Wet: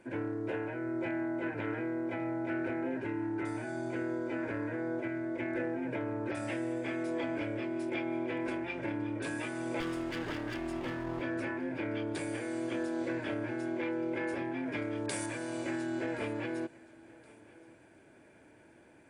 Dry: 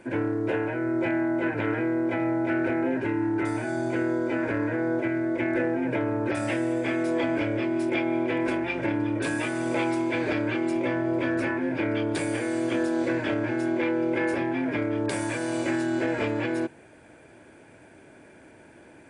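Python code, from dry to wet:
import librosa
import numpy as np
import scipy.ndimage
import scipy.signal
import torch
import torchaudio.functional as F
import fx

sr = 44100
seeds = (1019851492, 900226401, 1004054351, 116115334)

y = fx.lower_of_two(x, sr, delay_ms=0.6, at=(9.8, 11.21))
y = fx.high_shelf(y, sr, hz=3100.0, db=9.0, at=(14.72, 15.26))
y = fx.echo_feedback(y, sr, ms=1072, feedback_pct=35, wet_db=-22.5)
y = y * 10.0 ** (-9.0 / 20.0)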